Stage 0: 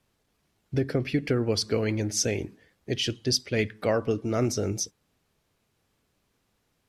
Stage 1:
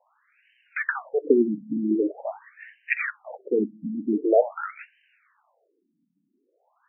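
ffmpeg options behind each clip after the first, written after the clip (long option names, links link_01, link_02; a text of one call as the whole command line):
ffmpeg -i in.wav -filter_complex "[0:a]highshelf=frequency=3500:gain=9.5,asplit=2[link_01][link_02];[link_02]highpass=frequency=720:poles=1,volume=16dB,asoftclip=type=tanh:threshold=-5.5dB[link_03];[link_01][link_03]amix=inputs=2:normalize=0,lowpass=frequency=6200:poles=1,volume=-6dB,afftfilt=real='re*between(b*sr/1024,210*pow(2200/210,0.5+0.5*sin(2*PI*0.45*pts/sr))/1.41,210*pow(2200/210,0.5+0.5*sin(2*PI*0.45*pts/sr))*1.41)':imag='im*between(b*sr/1024,210*pow(2200/210,0.5+0.5*sin(2*PI*0.45*pts/sr))/1.41,210*pow(2200/210,0.5+0.5*sin(2*PI*0.45*pts/sr))*1.41)':win_size=1024:overlap=0.75,volume=6dB" out.wav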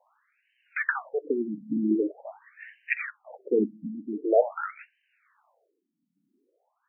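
ffmpeg -i in.wav -af "tremolo=f=1.1:d=0.67" out.wav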